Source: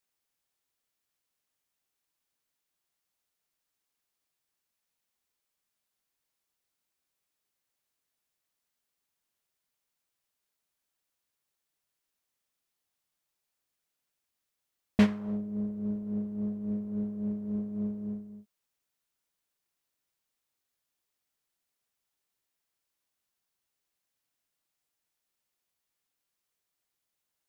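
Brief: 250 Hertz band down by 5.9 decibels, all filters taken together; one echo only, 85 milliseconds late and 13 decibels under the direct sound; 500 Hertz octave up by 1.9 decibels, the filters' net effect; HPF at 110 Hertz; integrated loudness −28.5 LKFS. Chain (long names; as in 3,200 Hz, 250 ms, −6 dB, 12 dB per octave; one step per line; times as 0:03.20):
high-pass filter 110 Hz
parametric band 250 Hz −8 dB
parametric band 500 Hz +5 dB
single-tap delay 85 ms −13 dB
level +9 dB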